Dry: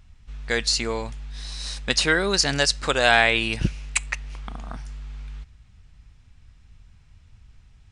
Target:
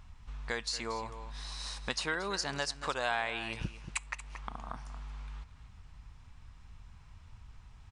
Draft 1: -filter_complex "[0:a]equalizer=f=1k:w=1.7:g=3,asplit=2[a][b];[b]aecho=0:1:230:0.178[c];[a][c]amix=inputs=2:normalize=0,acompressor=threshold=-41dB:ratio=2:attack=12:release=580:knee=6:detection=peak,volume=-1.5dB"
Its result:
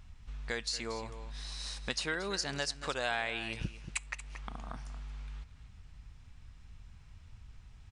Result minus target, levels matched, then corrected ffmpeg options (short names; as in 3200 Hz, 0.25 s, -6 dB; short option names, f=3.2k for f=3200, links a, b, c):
1000 Hz band -3.5 dB
-filter_complex "[0:a]equalizer=f=1k:w=1.7:g=10.5,asplit=2[a][b];[b]aecho=0:1:230:0.178[c];[a][c]amix=inputs=2:normalize=0,acompressor=threshold=-41dB:ratio=2:attack=12:release=580:knee=6:detection=peak,volume=-1.5dB"